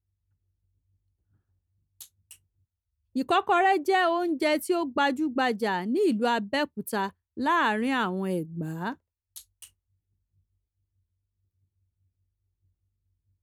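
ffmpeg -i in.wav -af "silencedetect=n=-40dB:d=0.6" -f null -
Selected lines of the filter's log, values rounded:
silence_start: 0.00
silence_end: 2.01 | silence_duration: 2.01
silence_start: 2.33
silence_end: 3.16 | silence_duration: 0.83
silence_start: 9.65
silence_end: 13.43 | silence_duration: 3.77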